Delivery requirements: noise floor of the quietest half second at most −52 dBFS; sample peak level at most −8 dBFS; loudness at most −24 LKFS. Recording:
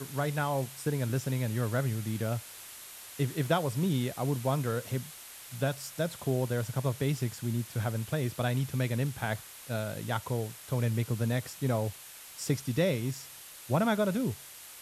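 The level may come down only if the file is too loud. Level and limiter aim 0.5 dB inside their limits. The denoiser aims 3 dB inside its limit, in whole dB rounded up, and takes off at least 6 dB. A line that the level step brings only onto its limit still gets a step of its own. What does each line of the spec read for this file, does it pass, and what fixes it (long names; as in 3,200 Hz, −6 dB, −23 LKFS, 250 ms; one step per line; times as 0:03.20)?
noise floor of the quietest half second −48 dBFS: out of spec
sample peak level −14.5 dBFS: in spec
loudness −32.0 LKFS: in spec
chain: broadband denoise 7 dB, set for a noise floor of −48 dBFS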